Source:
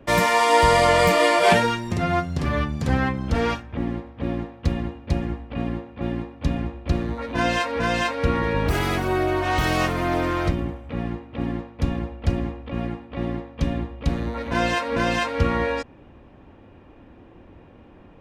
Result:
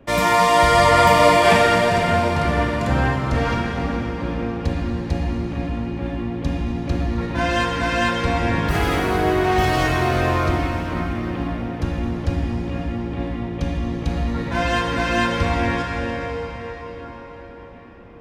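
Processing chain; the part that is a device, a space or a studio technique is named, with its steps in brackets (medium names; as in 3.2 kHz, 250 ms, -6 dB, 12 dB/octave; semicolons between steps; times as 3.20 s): cathedral (reverberation RT60 5.4 s, pre-delay 18 ms, DRR -2 dB); trim -1 dB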